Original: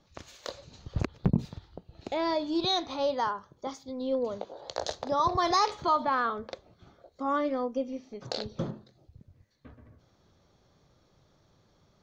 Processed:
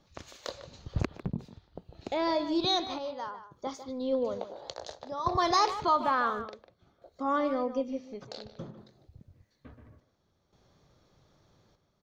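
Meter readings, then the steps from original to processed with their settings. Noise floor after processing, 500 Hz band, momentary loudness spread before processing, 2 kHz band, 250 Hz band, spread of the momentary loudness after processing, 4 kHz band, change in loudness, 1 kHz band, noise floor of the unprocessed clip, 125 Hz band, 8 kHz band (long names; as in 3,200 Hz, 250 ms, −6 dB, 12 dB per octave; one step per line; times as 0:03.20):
−73 dBFS, −1.0 dB, 17 LU, 0.0 dB, −1.0 dB, 19 LU, −0.5 dB, −1.0 dB, −0.5 dB, −67 dBFS, −4.5 dB, can't be measured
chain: square-wave tremolo 0.57 Hz, depth 65%, duty 70%
far-end echo of a speakerphone 150 ms, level −11 dB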